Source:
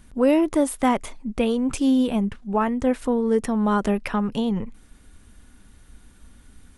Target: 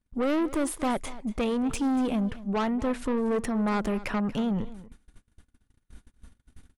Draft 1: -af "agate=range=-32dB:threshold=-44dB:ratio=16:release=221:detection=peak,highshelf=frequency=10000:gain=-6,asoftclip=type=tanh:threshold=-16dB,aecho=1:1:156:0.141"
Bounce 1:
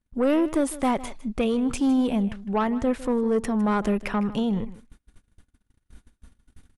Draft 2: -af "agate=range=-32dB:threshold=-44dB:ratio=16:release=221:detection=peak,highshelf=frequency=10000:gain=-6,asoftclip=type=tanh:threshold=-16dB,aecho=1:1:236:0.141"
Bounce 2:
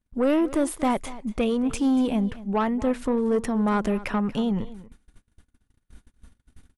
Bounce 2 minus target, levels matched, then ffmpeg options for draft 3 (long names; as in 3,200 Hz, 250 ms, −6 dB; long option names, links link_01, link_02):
soft clipping: distortion −6 dB
-af "agate=range=-32dB:threshold=-44dB:ratio=16:release=221:detection=peak,highshelf=frequency=10000:gain=-6,asoftclip=type=tanh:threshold=-23dB,aecho=1:1:236:0.141"